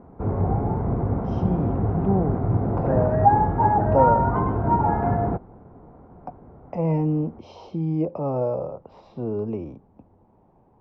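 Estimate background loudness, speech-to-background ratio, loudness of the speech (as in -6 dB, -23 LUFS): -22.5 LUFS, -4.5 dB, -27.0 LUFS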